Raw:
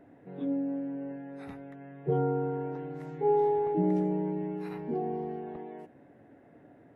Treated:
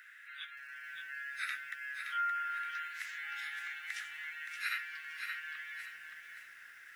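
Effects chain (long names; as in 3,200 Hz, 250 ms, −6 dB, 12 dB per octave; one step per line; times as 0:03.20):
Butterworth high-pass 1,400 Hz 72 dB per octave
feedback echo at a low word length 571 ms, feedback 35%, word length 13 bits, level −6 dB
level +18 dB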